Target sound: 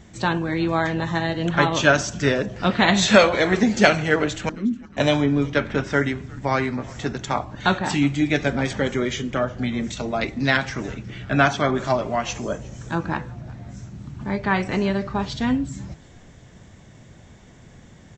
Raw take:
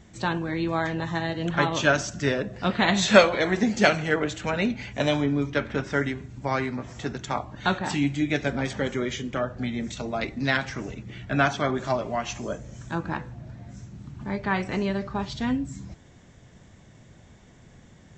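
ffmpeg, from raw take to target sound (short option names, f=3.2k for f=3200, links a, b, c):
-filter_complex "[0:a]asettb=1/sr,asplit=3[a][b][c];[a]atrim=end=4.494[d];[b]atrim=start=4.49:end=4.97,asetpts=PTS-STARTPTS,afade=t=in:d=0.004:c=qsin,afade=t=out:st=0.476:d=0.004:c=qsin,asuperpass=centerf=250:order=4:qfactor=2.2[e];[c]atrim=start=4.966[f];[d][e]acrossfade=d=0.004:c1=hsin:c2=qsin[g];[g][f]acrossfade=d=0.004:c1=qsin:c2=hsin,asplit=4[h][i][j][k];[i]adelay=362,afreqshift=-120,volume=-24dB[l];[j]adelay=724,afreqshift=-240,volume=-31.5dB[m];[k]adelay=1086,afreqshift=-360,volume=-39.1dB[n];[h][l][m][n]amix=inputs=4:normalize=0,alimiter=level_in=5.5dB:limit=-1dB:release=50:level=0:latency=1,volume=-1dB"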